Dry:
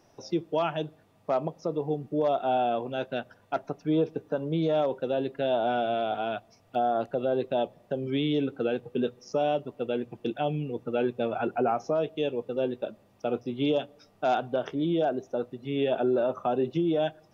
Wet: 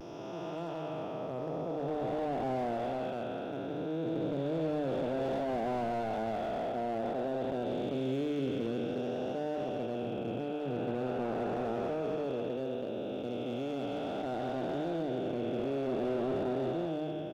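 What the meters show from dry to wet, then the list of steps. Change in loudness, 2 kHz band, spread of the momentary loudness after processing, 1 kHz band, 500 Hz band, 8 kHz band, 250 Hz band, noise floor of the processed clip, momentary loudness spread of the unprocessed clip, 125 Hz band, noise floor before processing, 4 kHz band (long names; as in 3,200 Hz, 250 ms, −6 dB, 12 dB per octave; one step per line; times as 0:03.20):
−6.0 dB, −6.5 dB, 5 LU, −7.0 dB, −6.0 dB, can't be measured, −4.5 dB, −39 dBFS, 8 LU, −4.5 dB, −62 dBFS, −8.5 dB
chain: spectrum smeared in time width 921 ms
mains-hum notches 50/100/150 Hz
pitch vibrato 0.56 Hz 34 cents
on a send: single-tap delay 130 ms −13.5 dB
on the sum: slew-rate limiting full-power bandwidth 17 Hz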